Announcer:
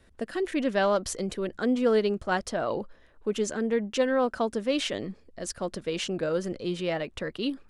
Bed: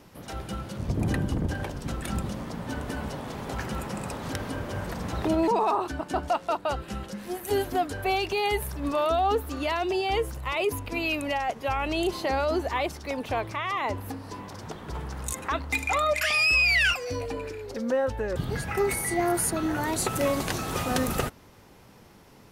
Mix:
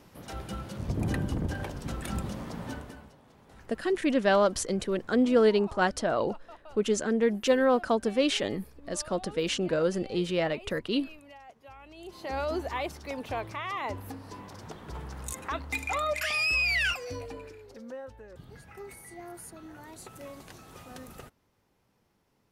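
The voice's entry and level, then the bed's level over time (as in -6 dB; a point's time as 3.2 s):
3.50 s, +1.5 dB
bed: 2.68 s -3 dB
3.15 s -22 dB
11.96 s -22 dB
12.38 s -5 dB
17.04 s -5 dB
18.25 s -19 dB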